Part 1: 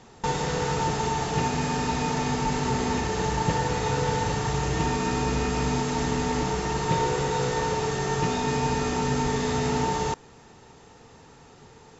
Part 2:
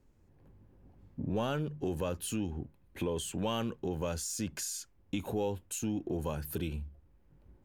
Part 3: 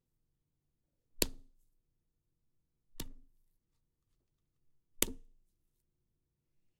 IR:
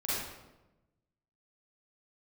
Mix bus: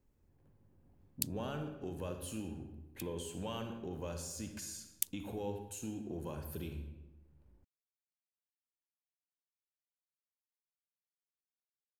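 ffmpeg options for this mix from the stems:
-filter_complex "[1:a]volume=0.316,asplit=2[s0][s1];[s1]volume=0.335[s2];[2:a]aderivative,volume=0.668[s3];[3:a]atrim=start_sample=2205[s4];[s2][s4]afir=irnorm=-1:irlink=0[s5];[s0][s3][s5]amix=inputs=3:normalize=0"

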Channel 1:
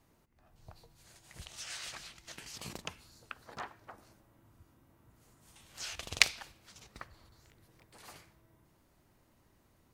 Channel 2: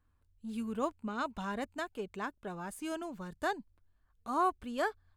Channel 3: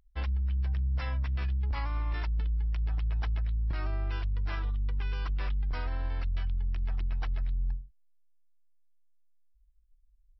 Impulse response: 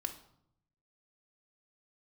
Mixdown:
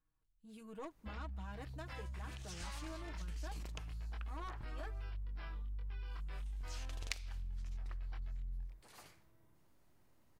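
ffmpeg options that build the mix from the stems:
-filter_complex "[0:a]adelay=900,volume=0.531[s0];[1:a]aecho=1:1:6.3:0.81,aeval=exprs='(tanh(25.1*val(0)+0.5)-tanh(0.5))/25.1':c=same,volume=0.316[s1];[2:a]flanger=delay=22.5:depth=3:speed=1.2,adelay=900,volume=0.501[s2];[s0][s1][s2]amix=inputs=3:normalize=0,acompressor=threshold=0.00708:ratio=2.5"

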